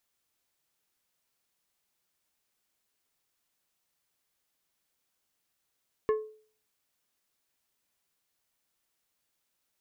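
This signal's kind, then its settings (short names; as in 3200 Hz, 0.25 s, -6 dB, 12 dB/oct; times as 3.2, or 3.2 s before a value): glass hit plate, lowest mode 432 Hz, decay 0.46 s, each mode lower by 9 dB, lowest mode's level -20.5 dB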